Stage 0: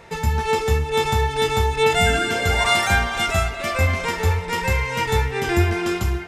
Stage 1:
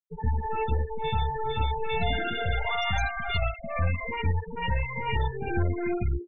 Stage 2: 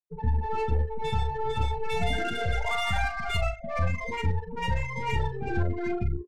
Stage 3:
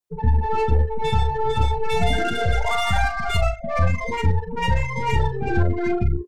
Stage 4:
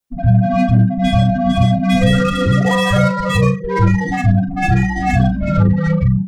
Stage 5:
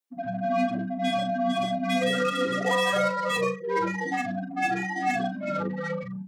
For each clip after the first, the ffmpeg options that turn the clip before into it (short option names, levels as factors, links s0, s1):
-filter_complex "[0:a]aeval=exprs='(tanh(11.2*val(0)+0.65)-tanh(0.65))/11.2':c=same,afftfilt=real='re*gte(hypot(re,im),0.112)':imag='im*gte(hypot(re,im),0.112)':win_size=1024:overlap=0.75,acrossover=split=420|1600[s0][s1][s2];[s1]adelay=60[s3];[s2]adelay=110[s4];[s0][s3][s4]amix=inputs=3:normalize=0"
-filter_complex "[0:a]adynamicsmooth=sensitivity=6:basefreq=1800,asplit=2[s0][s1];[s1]adelay=39,volume=0.282[s2];[s0][s2]amix=inputs=2:normalize=0"
-af "adynamicequalizer=threshold=0.00398:dfrequency=2400:dqfactor=1.9:tfrequency=2400:tqfactor=1.9:attack=5:release=100:ratio=0.375:range=2.5:mode=cutabove:tftype=bell,volume=2.37"
-af "afreqshift=-190,volume=2"
-af "highpass=f=250:w=0.5412,highpass=f=250:w=1.3066,volume=0.447"